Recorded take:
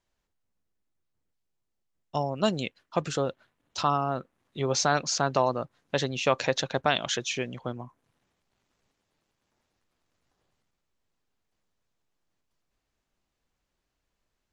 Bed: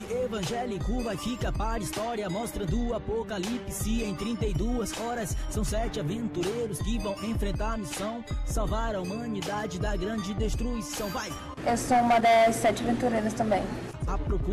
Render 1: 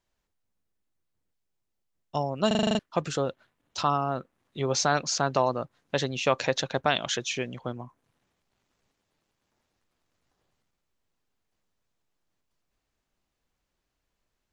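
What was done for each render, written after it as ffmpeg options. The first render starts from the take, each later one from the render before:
-filter_complex "[0:a]asplit=9[a][b][c][d][e][f][g][h][i];[a]atrim=end=2.512[j];[b]atrim=start=2.468:end=2.512[k];[c]atrim=start=2.468:end=2.512[l];[d]atrim=start=2.468:end=2.512[m];[e]atrim=start=2.468:end=2.512[n];[f]atrim=start=2.468:end=2.512[o];[g]atrim=start=2.468:end=2.512[p];[h]atrim=start=2.468:end=2.512[q];[i]atrim=start=2.788[r];[j][k]acrossfade=d=0.004:c1=hsin:c2=hsin[s];[s][l]acrossfade=d=0.004:c1=hsin:c2=hsin[t];[t][m]acrossfade=d=0.004:c1=hsin:c2=hsin[u];[u][n]acrossfade=d=0.004:c1=hsin:c2=hsin[v];[v][o]acrossfade=d=0.004:c1=hsin:c2=hsin[w];[w][p]acrossfade=d=0.004:c1=hsin:c2=hsin[x];[x][q]acrossfade=d=0.004:c1=hsin:c2=hsin[y];[y][r]acrossfade=d=0.004:c1=hsin:c2=hsin"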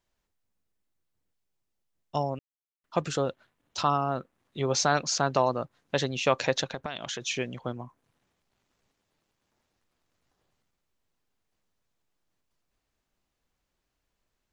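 -filter_complex "[0:a]asettb=1/sr,asplit=3[a][b][c];[a]atrim=end=6.644[d];[b]atrim=start=6.64:end=7.22,asetpts=PTS-STARTPTS,afade=t=in:d=0.004:c=qsin,afade=t=out:st=0.576:d=0.004:c=qsin,acompressor=threshold=-31dB:ratio=5:attack=3.2:release=140:knee=1:detection=peak[e];[c]atrim=start=7.216[f];[d][e]acrossfade=d=0.004:c1=hsin:c2=qsin[g];[g][f]acrossfade=d=0.004:c1=qsin:c2=hsin,asplit=3[h][i][j];[h]atrim=end=2.39,asetpts=PTS-STARTPTS,afade=t=out:st=2.386:d=0.004:c=hsin[k];[i]atrim=start=2.39:end=2.84,asetpts=PTS-STARTPTS,volume=0[l];[j]atrim=start=2.84,asetpts=PTS-STARTPTS,afade=t=in:d=0.004:c=hsin[m];[k][l][m]concat=n=3:v=0:a=1"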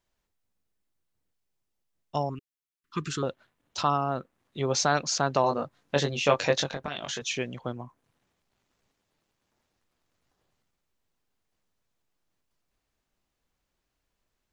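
-filter_complex "[0:a]asettb=1/sr,asplit=3[a][b][c];[a]atrim=end=2.294[d];[b]atrim=start=2.29:end=3.23,asetpts=PTS-STARTPTS,afade=t=in:d=0.004:c=qsin,afade=t=out:st=0.936:d=0.004:c=qsin,asuperstop=centerf=660:order=8:qfactor=0.99[e];[c]atrim=start=3.226[f];[d][e]acrossfade=d=0.004:c1=hsin:c2=qsin[g];[g][f]acrossfade=d=0.004:c1=qsin:c2=hsin,asettb=1/sr,asplit=3[h][i][j];[h]atrim=end=5.424[k];[i]atrim=start=5.42:end=7.22,asetpts=PTS-STARTPTS,afade=t=in:d=0.004:c=qsin,afade=t=out:st=1.796:d=0.004:c=qsin,asplit=2[l][m];[m]adelay=21,volume=-4dB[n];[l][n]amix=inputs=2:normalize=0,atrim=end_sample=79380[o];[j]atrim=start=7.216[p];[k][o]acrossfade=d=0.004:c1=hsin:c2=qsin[q];[q][p]acrossfade=d=0.004:c1=qsin:c2=hsin"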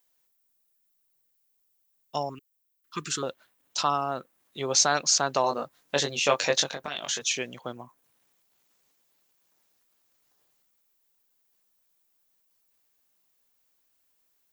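-af "aemphasis=mode=production:type=bsi"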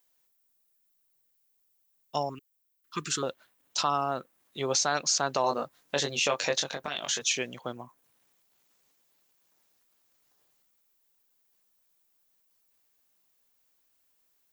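-af "alimiter=limit=-14.5dB:level=0:latency=1:release=143"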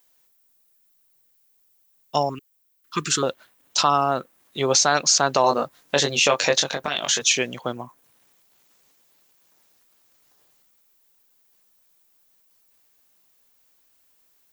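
-af "volume=8.5dB"

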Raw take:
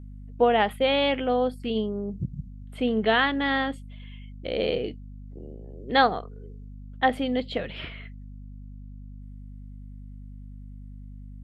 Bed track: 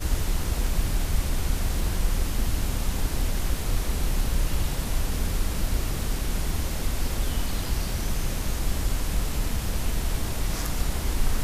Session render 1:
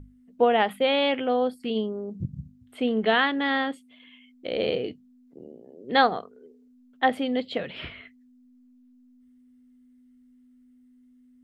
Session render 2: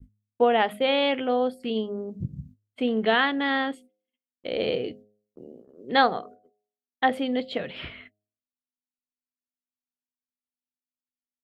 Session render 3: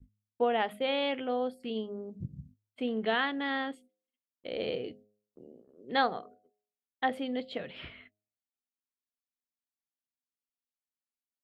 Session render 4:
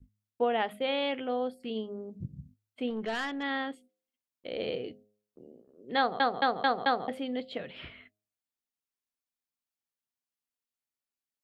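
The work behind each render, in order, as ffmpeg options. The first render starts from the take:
-af "bandreject=f=50:t=h:w=6,bandreject=f=100:t=h:w=6,bandreject=f=150:t=h:w=6,bandreject=f=200:t=h:w=6"
-af "agate=range=-51dB:threshold=-46dB:ratio=16:detection=peak,bandreject=f=104.4:t=h:w=4,bandreject=f=208.8:t=h:w=4,bandreject=f=313.2:t=h:w=4,bandreject=f=417.6:t=h:w=4,bandreject=f=522:t=h:w=4,bandreject=f=626.4:t=h:w=4,bandreject=f=730.8:t=h:w=4"
-af "volume=-7.5dB"
-filter_complex "[0:a]asettb=1/sr,asplit=3[a][b][c];[a]atrim=end=2.904[d];[b]atrim=start=2.9:end=3.43,asetpts=PTS-STARTPTS,afade=t=in:d=0.004:c=qsin,afade=t=out:st=0.526:d=0.004:c=qsin,aeval=exprs='(tanh(25.1*val(0)+0.05)-tanh(0.05))/25.1':c=same[e];[c]atrim=start=3.426[f];[d][e]acrossfade=d=0.004:c1=hsin:c2=qsin[g];[g][f]acrossfade=d=0.004:c1=qsin:c2=hsin,asplit=6[h][i][j][k][l][m];[h]atrim=end=6.202[n];[i]atrim=start=5.978:end=6.202[o];[j]atrim=start=5.978:end=6.202[p];[k]atrim=start=5.978:end=6.202[q];[l]atrim=start=5.978:end=6.202[r];[m]atrim=start=7.078[s];[n][o]acrossfade=d=0.004:c1=hsin:c2=hsin[t];[t][p]acrossfade=d=0.004:c1=hsin:c2=hsin[u];[u][q]acrossfade=d=0.004:c1=hsin:c2=hsin[v];[v][r]acrossfade=d=0.004:c1=hsin:c2=hsin[w];[w][s]acrossfade=d=0.004:c1=hsin:c2=hsin"

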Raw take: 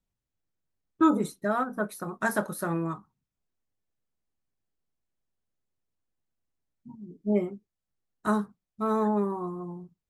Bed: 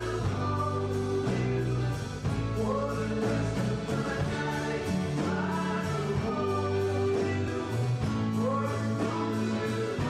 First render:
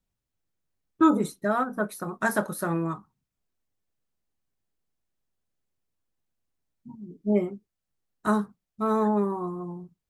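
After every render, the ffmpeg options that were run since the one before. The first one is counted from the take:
-af "volume=2dB"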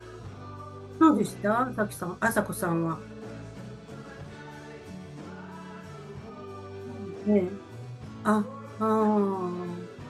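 -filter_complex "[1:a]volume=-12.5dB[a];[0:a][a]amix=inputs=2:normalize=0"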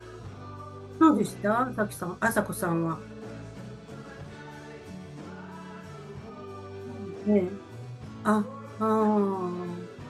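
-af anull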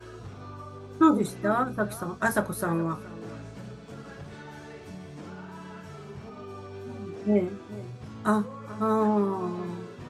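-filter_complex "[0:a]asplit=2[a][b];[b]adelay=419.8,volume=-18dB,highshelf=f=4k:g=-9.45[c];[a][c]amix=inputs=2:normalize=0"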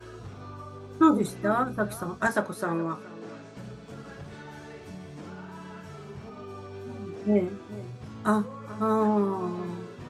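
-filter_complex "[0:a]asettb=1/sr,asplit=3[a][b][c];[a]atrim=end=2.274[d];[b]atrim=start=2.27:end=3.57,asetpts=PTS-STARTPTS,afade=t=in:d=0.004:c=qsin,afade=t=out:st=1.296:d=0.004:c=qsin,highpass=200,lowpass=7.6k[e];[c]atrim=start=3.566[f];[d][e]acrossfade=d=0.004:c1=hsin:c2=qsin[g];[g][f]acrossfade=d=0.004:c1=qsin:c2=hsin"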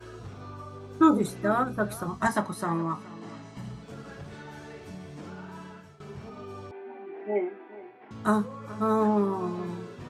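-filter_complex "[0:a]asettb=1/sr,asplit=3[a][b][c];[a]atrim=end=2.074[d];[b]atrim=start=2.07:end=3.83,asetpts=PTS-STARTPTS,afade=t=in:d=0.004:c=qsin,afade=t=out:st=1.756:d=0.004:c=qsin,aecho=1:1:1:0.59,atrim=end_sample=77616[e];[c]atrim=start=3.826[f];[d][e]acrossfade=d=0.004:c1=hsin:c2=qsin[g];[g][f]acrossfade=d=0.004:c1=qsin:c2=hsin,asettb=1/sr,asplit=3[h][i][j];[h]atrim=end=6.714[k];[i]atrim=start=6.71:end=8.11,asetpts=PTS-STARTPTS,afade=t=in:d=0.004:c=qsin,afade=t=out:st=1.396:d=0.004:c=qsin,highpass=f=330:w=0.5412,highpass=f=330:w=1.3066,equalizer=f=350:t=q:w=4:g=3,equalizer=f=530:t=q:w=4:g=-10,equalizer=f=810:t=q:w=4:g=8,equalizer=f=1.2k:t=q:w=4:g=-8,equalizer=f=2k:t=q:w=4:g=5,lowpass=f=2.4k:w=0.5412,lowpass=f=2.4k:w=1.3066[l];[j]atrim=start=8.106[m];[k][l]acrossfade=d=0.004:c1=hsin:c2=qsin[n];[n][m]acrossfade=d=0.004:c1=qsin:c2=hsin,asplit=2[o][p];[o]atrim=end=6,asetpts=PTS-STARTPTS,afade=t=out:st=5.6:d=0.4:silence=0.149624[q];[p]atrim=start=6,asetpts=PTS-STARTPTS,afade=t=in:d=0.004:c=hsin:silence=0.149624[r];[q][r]concat=n=2:v=0:a=1"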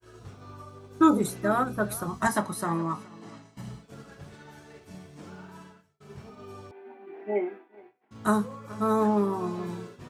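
-af "agate=range=-33dB:threshold=-37dB:ratio=3:detection=peak,highshelf=f=7.8k:g=10"

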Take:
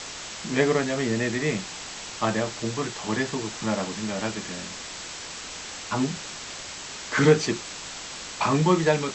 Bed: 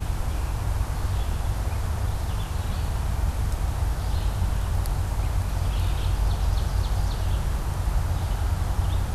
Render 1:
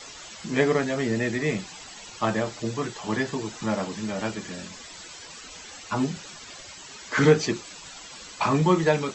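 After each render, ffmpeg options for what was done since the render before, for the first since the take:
-af "afftdn=nr=13:nf=-38"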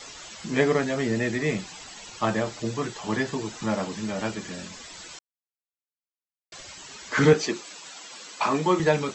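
-filter_complex "[0:a]asettb=1/sr,asplit=3[a][b][c];[a]atrim=end=7.334[d];[b]atrim=start=7.33:end=8.8,asetpts=PTS-STARTPTS,afade=t=in:d=0.004:c=qsin,afade=t=out:st=1.466:d=0.004:c=qsin,highpass=260[e];[c]atrim=start=8.796[f];[d][e]acrossfade=d=0.004:c1=hsin:c2=qsin[g];[g][f]acrossfade=d=0.004:c1=qsin:c2=hsin,asplit=3[h][i][j];[h]atrim=end=5.19,asetpts=PTS-STARTPTS,afade=t=out:st=5.186:d=0.004:c=hsin[k];[i]atrim=start=5.19:end=6.52,asetpts=PTS-STARTPTS,volume=0[l];[j]atrim=start=6.52,asetpts=PTS-STARTPTS,afade=t=in:d=0.004:c=hsin[m];[k][l][m]concat=n=3:v=0:a=1"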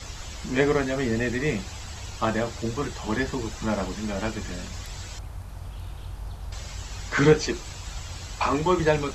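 -filter_complex "[1:a]volume=-12.5dB[a];[0:a][a]amix=inputs=2:normalize=0"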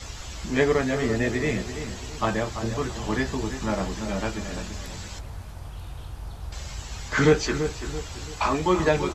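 -filter_complex "[0:a]asplit=2[a][b];[b]adelay=16,volume=-11dB[c];[a][c]amix=inputs=2:normalize=0,asplit=2[d][e];[e]adelay=336,lowpass=f=2k:p=1,volume=-9dB,asplit=2[f][g];[g]adelay=336,lowpass=f=2k:p=1,volume=0.4,asplit=2[h][i];[i]adelay=336,lowpass=f=2k:p=1,volume=0.4,asplit=2[j][k];[k]adelay=336,lowpass=f=2k:p=1,volume=0.4[l];[f][h][j][l]amix=inputs=4:normalize=0[m];[d][m]amix=inputs=2:normalize=0"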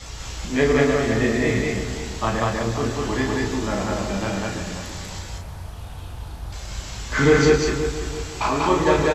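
-filter_complex "[0:a]asplit=2[a][b];[b]adelay=35,volume=-4dB[c];[a][c]amix=inputs=2:normalize=0,aecho=1:1:107.9|192.4:0.316|0.891"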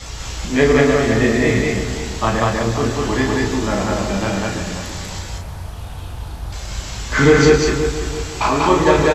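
-af "volume=5dB,alimiter=limit=-1dB:level=0:latency=1"

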